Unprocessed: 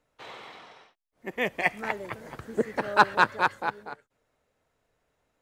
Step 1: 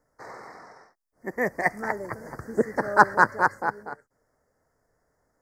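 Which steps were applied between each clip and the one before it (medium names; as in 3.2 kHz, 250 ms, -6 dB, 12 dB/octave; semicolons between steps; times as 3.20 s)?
elliptic band-stop 1.9–4.9 kHz, stop band 60 dB; trim +3.5 dB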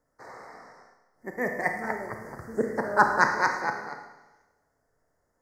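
time-frequency box 3.21–4.44 s, 1.8–6.8 kHz +12 dB; Schroeder reverb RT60 1.1 s, combs from 25 ms, DRR 4 dB; trim -4 dB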